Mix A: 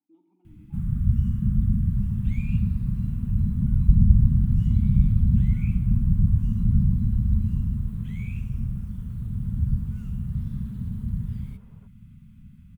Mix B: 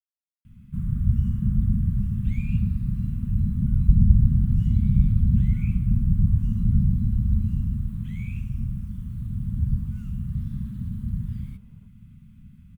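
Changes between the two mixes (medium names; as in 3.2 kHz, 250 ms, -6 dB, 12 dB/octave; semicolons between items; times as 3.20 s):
speech: muted; second sound -10.0 dB; reverb: off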